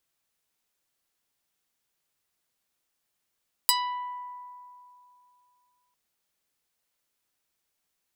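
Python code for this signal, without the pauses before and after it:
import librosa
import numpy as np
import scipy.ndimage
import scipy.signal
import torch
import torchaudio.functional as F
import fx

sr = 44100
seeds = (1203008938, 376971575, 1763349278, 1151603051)

y = fx.pluck(sr, length_s=2.25, note=83, decay_s=2.73, pick=0.47, brightness='medium')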